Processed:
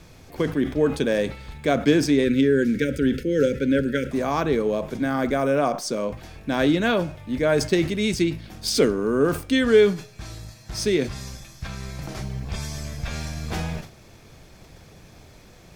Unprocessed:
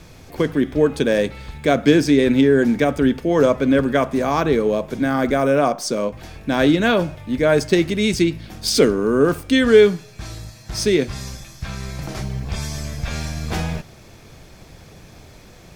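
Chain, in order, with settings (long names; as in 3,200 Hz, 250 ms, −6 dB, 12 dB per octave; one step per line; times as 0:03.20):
time-frequency box erased 0:02.25–0:04.12, 560–1,300 Hz
level that may fall only so fast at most 140 dB per second
level −4.5 dB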